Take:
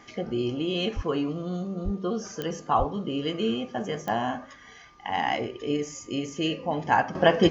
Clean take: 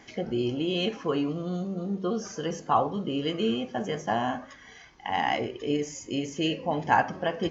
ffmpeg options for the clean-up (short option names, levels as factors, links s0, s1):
-filter_complex "[0:a]adeclick=t=4,bandreject=f=1200:w=30,asplit=3[s0][s1][s2];[s0]afade=t=out:st=0.95:d=0.02[s3];[s1]highpass=f=140:w=0.5412,highpass=f=140:w=1.3066,afade=t=in:st=0.95:d=0.02,afade=t=out:st=1.07:d=0.02[s4];[s2]afade=t=in:st=1.07:d=0.02[s5];[s3][s4][s5]amix=inputs=3:normalize=0,asplit=3[s6][s7][s8];[s6]afade=t=out:st=1.84:d=0.02[s9];[s7]highpass=f=140:w=0.5412,highpass=f=140:w=1.3066,afade=t=in:st=1.84:d=0.02,afade=t=out:st=1.96:d=0.02[s10];[s8]afade=t=in:st=1.96:d=0.02[s11];[s9][s10][s11]amix=inputs=3:normalize=0,asplit=3[s12][s13][s14];[s12]afade=t=out:st=2.78:d=0.02[s15];[s13]highpass=f=140:w=0.5412,highpass=f=140:w=1.3066,afade=t=in:st=2.78:d=0.02,afade=t=out:st=2.9:d=0.02[s16];[s14]afade=t=in:st=2.9:d=0.02[s17];[s15][s16][s17]amix=inputs=3:normalize=0,asetnsamples=n=441:p=0,asendcmd='7.15 volume volume -9.5dB',volume=1"